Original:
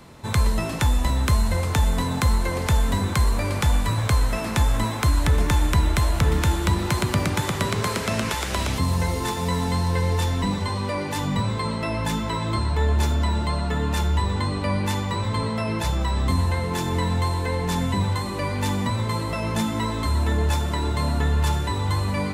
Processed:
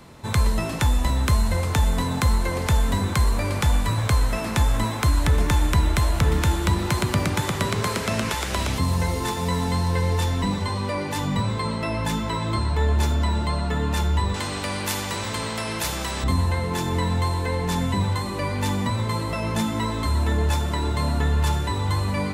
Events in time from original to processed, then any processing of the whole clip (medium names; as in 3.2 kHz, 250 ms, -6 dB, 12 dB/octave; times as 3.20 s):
14.34–16.24 s: spectrum-flattening compressor 2:1